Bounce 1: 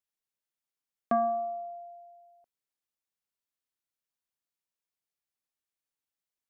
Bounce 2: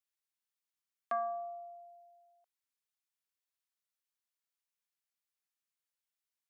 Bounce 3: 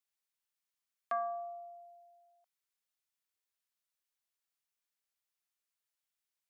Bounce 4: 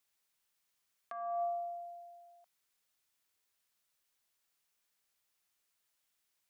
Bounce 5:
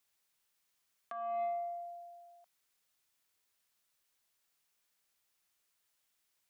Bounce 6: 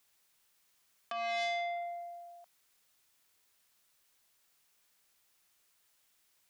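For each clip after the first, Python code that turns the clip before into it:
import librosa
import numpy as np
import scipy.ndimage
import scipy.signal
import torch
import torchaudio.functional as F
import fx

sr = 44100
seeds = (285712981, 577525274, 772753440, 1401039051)

y1 = scipy.signal.sosfilt(scipy.signal.butter(2, 1000.0, 'highpass', fs=sr, output='sos'), x)
y1 = F.gain(torch.from_numpy(y1), -1.5).numpy()
y2 = fx.peak_eq(y1, sr, hz=170.0, db=-7.5, octaves=2.6)
y2 = F.gain(torch.from_numpy(y2), 1.0).numpy()
y3 = fx.over_compress(y2, sr, threshold_db=-42.0, ratio=-1.0)
y3 = F.gain(torch.from_numpy(y3), 5.0).numpy()
y4 = 10.0 ** (-31.0 / 20.0) * np.tanh(y3 / 10.0 ** (-31.0 / 20.0))
y4 = F.gain(torch.from_numpy(y4), 1.5).numpy()
y5 = fx.transformer_sat(y4, sr, knee_hz=2200.0)
y5 = F.gain(torch.from_numpy(y5), 7.0).numpy()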